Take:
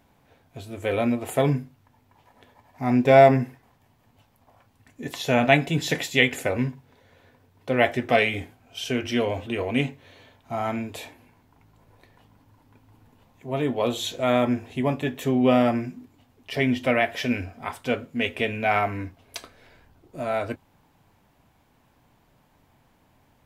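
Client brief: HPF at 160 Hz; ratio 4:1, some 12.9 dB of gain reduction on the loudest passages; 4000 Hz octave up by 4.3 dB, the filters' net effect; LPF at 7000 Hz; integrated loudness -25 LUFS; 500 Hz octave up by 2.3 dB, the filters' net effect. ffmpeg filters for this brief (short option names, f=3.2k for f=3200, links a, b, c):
-af "highpass=160,lowpass=7k,equalizer=f=500:t=o:g=3,equalizer=f=4k:t=o:g=6,acompressor=threshold=-23dB:ratio=4,volume=3.5dB"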